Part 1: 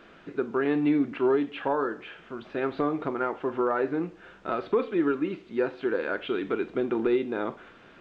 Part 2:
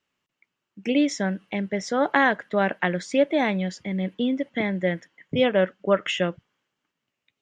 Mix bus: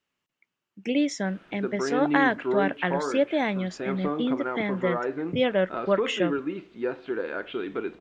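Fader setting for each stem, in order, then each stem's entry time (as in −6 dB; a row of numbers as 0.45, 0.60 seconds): −2.5, −3.0 decibels; 1.25, 0.00 seconds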